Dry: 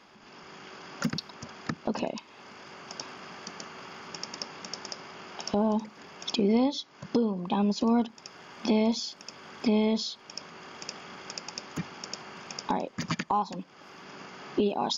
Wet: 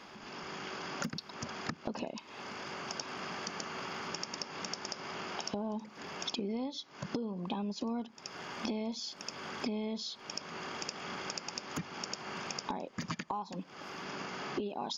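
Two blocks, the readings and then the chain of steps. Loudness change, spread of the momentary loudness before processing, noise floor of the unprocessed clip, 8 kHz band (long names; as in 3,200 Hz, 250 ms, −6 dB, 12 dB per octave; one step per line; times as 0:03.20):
−8.5 dB, 19 LU, −54 dBFS, can't be measured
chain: downward compressor 6 to 1, threshold −40 dBFS, peak gain reduction 18 dB
level +4.5 dB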